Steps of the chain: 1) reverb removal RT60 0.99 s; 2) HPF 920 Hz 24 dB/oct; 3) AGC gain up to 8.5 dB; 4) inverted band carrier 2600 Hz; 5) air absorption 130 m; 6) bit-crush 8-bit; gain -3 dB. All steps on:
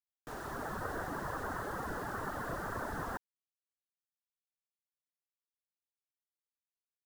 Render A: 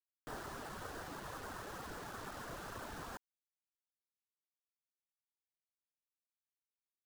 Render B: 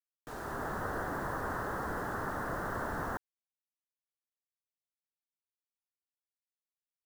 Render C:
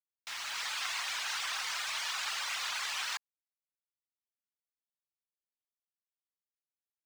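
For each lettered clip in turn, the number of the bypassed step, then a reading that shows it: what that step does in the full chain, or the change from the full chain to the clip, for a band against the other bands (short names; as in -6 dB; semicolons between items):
3, momentary loudness spread change -2 LU; 1, 4 kHz band -3.5 dB; 4, 500 Hz band -26.5 dB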